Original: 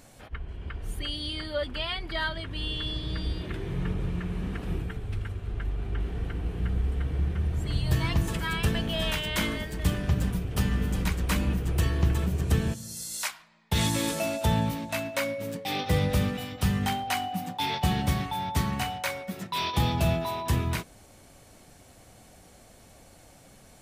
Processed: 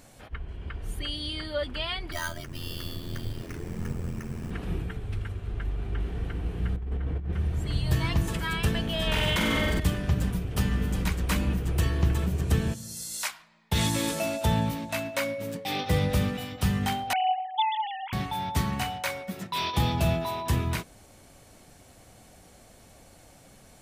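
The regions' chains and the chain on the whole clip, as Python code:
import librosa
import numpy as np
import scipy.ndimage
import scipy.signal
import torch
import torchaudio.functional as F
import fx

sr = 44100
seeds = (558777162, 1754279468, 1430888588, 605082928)

y = fx.chain(x, sr, fx.peak_eq(hz=3600.0, db=-5.0, octaves=0.41),
    fx.ring_mod(carrier_hz=42.0),
    fx.sample_hold(seeds[0], rate_hz=7900.0, jitter_pct=0), at=(2.12, 4.51))
y = fx.chain(y, sr, fx.lowpass(hz=1600.0, slope=6),
    fx.peak_eq(hz=120.0, db=-2.5, octaves=0.85),
    fx.over_compress(threshold_db=-29.0, ratio=-0.5), at=(6.76, 7.33))
y = fx.chain(y, sr, fx.high_shelf(hz=3900.0, db=-7.0),
    fx.room_flutter(wall_m=7.9, rt60_s=0.77),
    fx.env_flatten(amount_pct=100), at=(9.07, 9.8))
y = fx.chain(y, sr, fx.sine_speech(),
    fx.notch(hz=1100.0, q=12.0), at=(17.13, 18.13))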